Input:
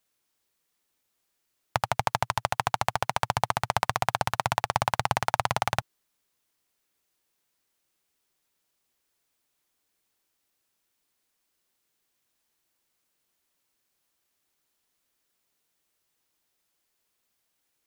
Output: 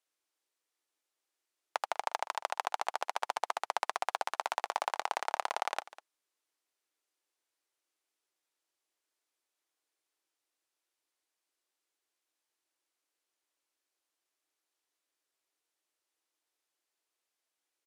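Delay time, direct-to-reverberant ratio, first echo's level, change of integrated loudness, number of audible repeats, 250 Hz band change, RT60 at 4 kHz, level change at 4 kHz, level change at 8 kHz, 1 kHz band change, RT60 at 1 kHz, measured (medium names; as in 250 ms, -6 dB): 199 ms, no reverb, -17.5 dB, -7.5 dB, 1, -19.0 dB, no reverb, -8.0 dB, -8.5 dB, -7.0 dB, no reverb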